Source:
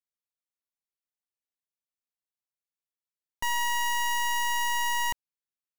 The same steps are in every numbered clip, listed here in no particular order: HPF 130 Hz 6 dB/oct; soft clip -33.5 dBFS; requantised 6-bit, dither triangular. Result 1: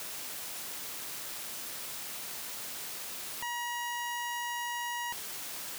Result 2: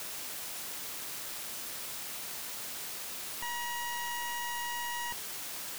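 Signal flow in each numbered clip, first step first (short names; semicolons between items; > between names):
requantised > soft clip > HPF; requantised > HPF > soft clip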